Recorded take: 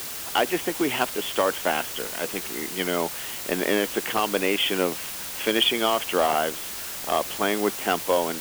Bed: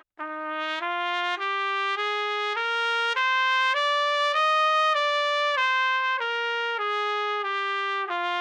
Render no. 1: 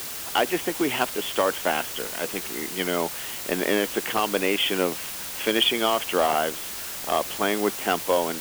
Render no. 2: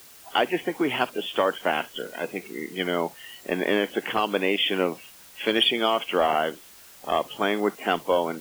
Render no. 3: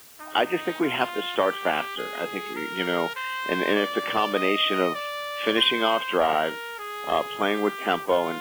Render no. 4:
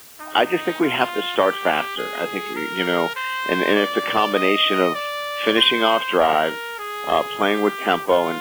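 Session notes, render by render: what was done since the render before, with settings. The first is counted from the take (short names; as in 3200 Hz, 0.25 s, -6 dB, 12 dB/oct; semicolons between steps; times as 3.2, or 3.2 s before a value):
nothing audible
noise print and reduce 15 dB
add bed -8 dB
gain +5 dB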